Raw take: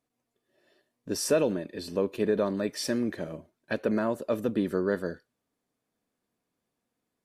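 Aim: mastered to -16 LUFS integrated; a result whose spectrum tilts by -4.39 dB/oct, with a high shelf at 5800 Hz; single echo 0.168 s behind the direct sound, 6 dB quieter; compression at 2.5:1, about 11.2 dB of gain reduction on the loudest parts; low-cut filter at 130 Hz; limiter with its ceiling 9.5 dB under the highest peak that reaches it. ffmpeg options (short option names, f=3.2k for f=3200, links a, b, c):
-af "highpass=130,highshelf=f=5.8k:g=-7.5,acompressor=threshold=-38dB:ratio=2.5,alimiter=level_in=8dB:limit=-24dB:level=0:latency=1,volume=-8dB,aecho=1:1:168:0.501,volume=26dB"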